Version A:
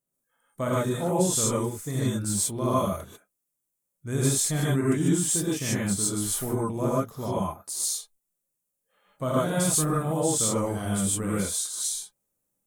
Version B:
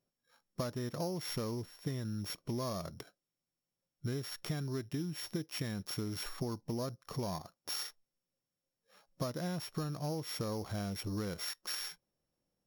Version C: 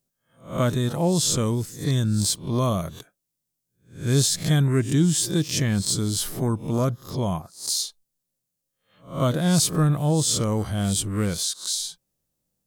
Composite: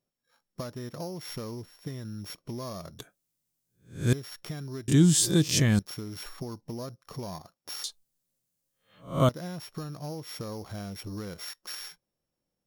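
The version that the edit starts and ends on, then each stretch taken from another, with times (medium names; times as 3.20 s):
B
2.99–4.13 s: from C
4.88–5.79 s: from C
7.84–9.29 s: from C
not used: A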